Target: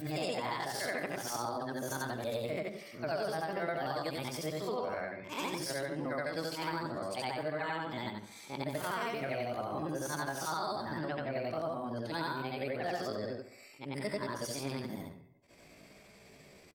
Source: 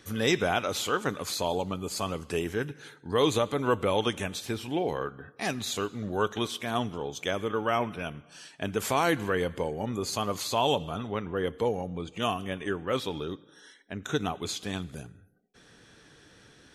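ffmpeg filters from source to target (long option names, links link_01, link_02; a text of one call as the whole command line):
ffmpeg -i in.wav -filter_complex "[0:a]afftfilt=real='re':imag='-im':win_size=8192:overlap=0.75,highshelf=frequency=2200:gain=-4.5,asetrate=60591,aresample=44100,atempo=0.727827,acompressor=threshold=-37dB:ratio=6,asplit=2[link_01][link_02];[link_02]adelay=66,lowpass=frequency=2000:poles=1,volume=-11.5dB,asplit=2[link_03][link_04];[link_04]adelay=66,lowpass=frequency=2000:poles=1,volume=0.45,asplit=2[link_05][link_06];[link_06]adelay=66,lowpass=frequency=2000:poles=1,volume=0.45,asplit=2[link_07][link_08];[link_08]adelay=66,lowpass=frequency=2000:poles=1,volume=0.45,asplit=2[link_09][link_10];[link_10]adelay=66,lowpass=frequency=2000:poles=1,volume=0.45[link_11];[link_03][link_05][link_07][link_09][link_11]amix=inputs=5:normalize=0[link_12];[link_01][link_12]amix=inputs=2:normalize=0,volume=4dB" out.wav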